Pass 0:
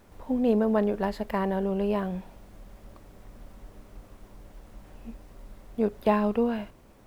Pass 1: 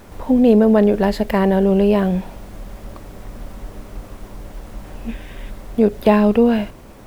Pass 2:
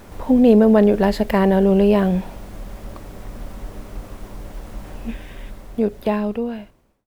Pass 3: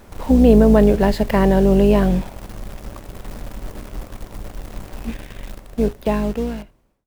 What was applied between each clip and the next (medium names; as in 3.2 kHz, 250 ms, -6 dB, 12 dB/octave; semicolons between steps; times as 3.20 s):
time-frequency box 5.09–5.50 s, 1.5–3.8 kHz +10 dB; dynamic bell 1.1 kHz, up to -6 dB, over -45 dBFS, Q 1.4; in parallel at -1 dB: peak limiter -23 dBFS, peak gain reduction 10 dB; on the sum: trim +8.5 dB
fade out at the end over 2.21 s
octave divider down 2 oct, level -3 dB; in parallel at -7 dB: bit crusher 5-bit; on the sum: trim -3 dB